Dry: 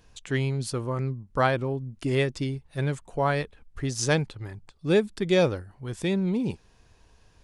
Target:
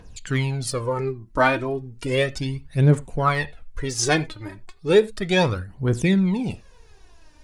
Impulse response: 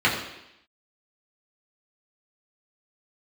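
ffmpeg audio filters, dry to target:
-filter_complex "[0:a]aphaser=in_gain=1:out_gain=1:delay=3.4:decay=0.72:speed=0.34:type=triangular,asplit=2[a][b];[1:a]atrim=start_sample=2205,atrim=end_sample=4410[c];[b][c]afir=irnorm=-1:irlink=0,volume=-29dB[d];[a][d]amix=inputs=2:normalize=0,volume=3dB"

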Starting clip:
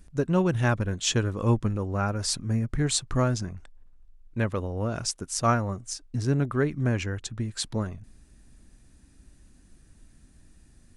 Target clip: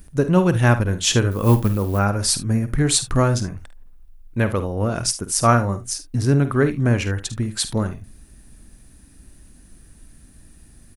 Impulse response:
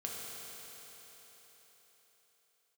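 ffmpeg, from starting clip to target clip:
-filter_complex "[0:a]asettb=1/sr,asplit=3[a][b][c];[a]atrim=end=1.314[d];[b]atrim=start=1.31:end=1.99,asetpts=PTS-STARTPTS,afade=t=in:d=0.004:c=qsin,afade=t=out:st=0.676:d=0.004:c=qsin,acrusher=bits=7:mode=log:mix=0:aa=0.000001[e];[c]atrim=start=1.986[f];[d][e]acrossfade=d=0.004:c1=hsin:c2=qsin[g];[g][f]acrossfade=d=0.004:c1=qsin:c2=hsin,aexciter=amount=3.8:drive=3.7:freq=9.7k,aecho=1:1:50|74:0.251|0.141,volume=7dB"

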